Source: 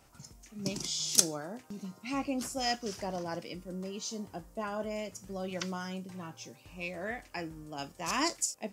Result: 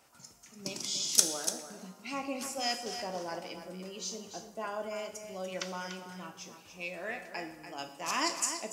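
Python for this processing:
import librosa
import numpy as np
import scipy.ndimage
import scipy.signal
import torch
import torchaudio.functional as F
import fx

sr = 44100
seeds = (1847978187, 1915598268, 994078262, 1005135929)

p1 = fx.highpass(x, sr, hz=450.0, slope=6)
p2 = p1 + fx.echo_single(p1, sr, ms=291, db=-9.5, dry=0)
y = fx.rev_plate(p2, sr, seeds[0], rt60_s=1.1, hf_ratio=0.8, predelay_ms=0, drr_db=7.5)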